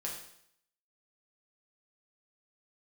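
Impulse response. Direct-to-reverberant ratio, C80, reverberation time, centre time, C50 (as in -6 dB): -3.5 dB, 7.5 dB, 0.70 s, 35 ms, 5.0 dB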